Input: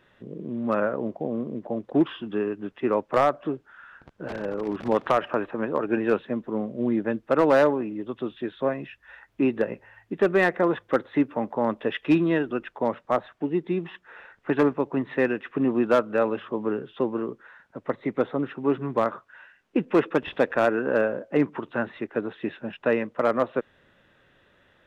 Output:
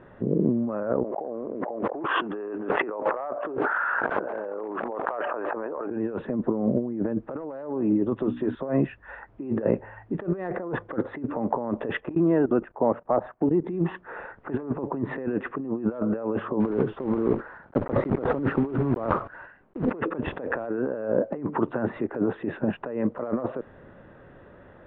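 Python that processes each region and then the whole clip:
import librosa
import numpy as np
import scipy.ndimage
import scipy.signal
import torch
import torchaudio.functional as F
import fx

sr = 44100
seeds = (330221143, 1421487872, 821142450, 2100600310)

y = fx.chain(x, sr, fx.bandpass_edges(low_hz=570.0, high_hz=2600.0),
    fx.env_flatten(amount_pct=100), at=(1.04, 5.9))
y = fx.chain(y, sr, fx.hum_notches(base_hz=60, count=5),
    fx.clip_hard(threshold_db=-23.0), at=(8.15, 8.55))
y = fx.chain(y, sr, fx.lowpass(hz=3000.0, slope=12),
    fx.peak_eq(hz=710.0, db=3.0, octaves=1.0),
    fx.level_steps(step_db=17), at=(12.0, 13.64))
y = fx.chain(y, sr, fx.block_float(bits=3),
    fx.air_absorb(metres=260.0),
    fx.sustainer(db_per_s=140.0), at=(16.6, 19.93))
y = scipy.signal.sosfilt(scipy.signal.butter(2, 1000.0, 'lowpass', fs=sr, output='sos'), y)
y = fx.over_compress(y, sr, threshold_db=-34.0, ratio=-1.0)
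y = y * librosa.db_to_amplitude(6.0)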